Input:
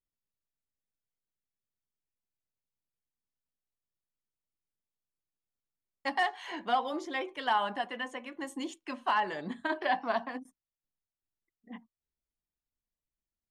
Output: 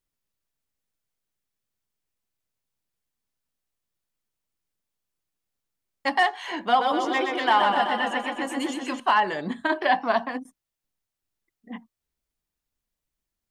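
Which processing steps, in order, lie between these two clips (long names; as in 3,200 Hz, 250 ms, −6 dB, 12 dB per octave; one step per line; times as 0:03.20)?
0:06.66–0:09.00: feedback echo with a swinging delay time 126 ms, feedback 70%, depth 71 cents, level −5 dB
level +8 dB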